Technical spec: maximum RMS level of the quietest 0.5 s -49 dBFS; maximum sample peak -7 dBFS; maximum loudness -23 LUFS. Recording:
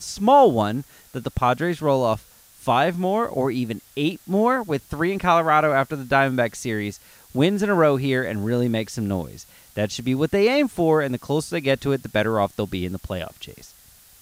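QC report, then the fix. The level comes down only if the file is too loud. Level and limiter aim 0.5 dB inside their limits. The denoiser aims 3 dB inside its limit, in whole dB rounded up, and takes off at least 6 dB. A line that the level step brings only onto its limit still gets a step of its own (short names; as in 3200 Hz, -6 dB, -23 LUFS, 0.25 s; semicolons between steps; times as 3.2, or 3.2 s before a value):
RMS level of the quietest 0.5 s -51 dBFS: OK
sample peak -5.5 dBFS: fail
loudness -22.0 LUFS: fail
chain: gain -1.5 dB; limiter -7.5 dBFS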